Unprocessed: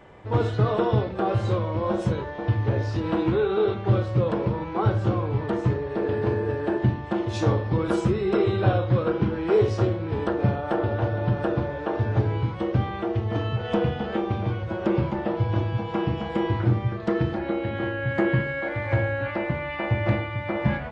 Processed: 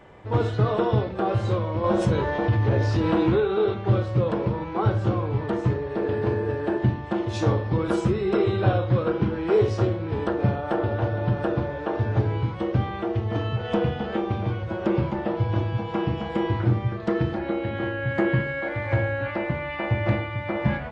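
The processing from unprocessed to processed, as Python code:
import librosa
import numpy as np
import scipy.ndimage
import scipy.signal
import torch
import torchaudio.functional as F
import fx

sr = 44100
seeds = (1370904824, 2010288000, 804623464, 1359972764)

y = fx.env_flatten(x, sr, amount_pct=50, at=(1.84, 3.4))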